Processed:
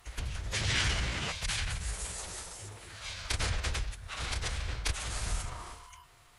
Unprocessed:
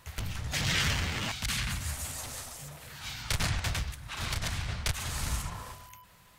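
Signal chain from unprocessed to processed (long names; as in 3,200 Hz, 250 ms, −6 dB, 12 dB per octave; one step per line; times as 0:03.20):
hum removal 112 Hz, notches 8
phase-vocoder pitch shift with formants kept −6 semitones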